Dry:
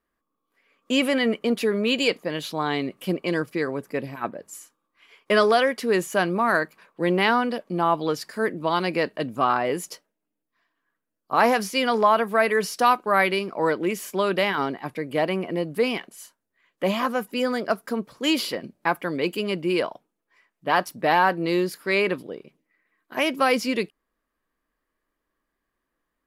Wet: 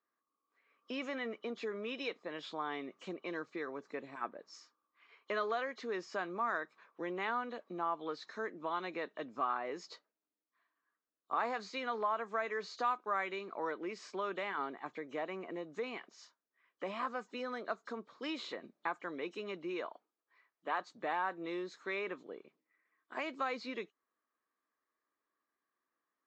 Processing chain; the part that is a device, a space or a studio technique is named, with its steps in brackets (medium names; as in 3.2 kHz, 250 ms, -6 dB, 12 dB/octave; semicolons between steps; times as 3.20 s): 19.86–20.80 s: high-pass 230 Hz; hearing aid with frequency lowering (knee-point frequency compression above 2.9 kHz 1.5:1; compression 2:1, threshold -30 dBFS, peak gain reduction 9.5 dB; cabinet simulation 310–5500 Hz, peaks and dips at 550 Hz -3 dB, 1.2 kHz +5 dB, 2.9 kHz -5 dB); trim -8.5 dB